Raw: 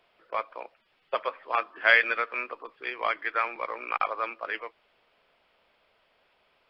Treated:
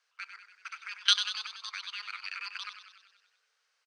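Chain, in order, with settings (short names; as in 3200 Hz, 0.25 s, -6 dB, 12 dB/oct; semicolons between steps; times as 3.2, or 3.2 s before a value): level quantiser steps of 19 dB; speed mistake 45 rpm record played at 78 rpm; on a send: frequency-shifting echo 95 ms, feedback 61%, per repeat +31 Hz, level -9.5 dB; on the sum: frequency shift +430 Hz; gain -1.5 dB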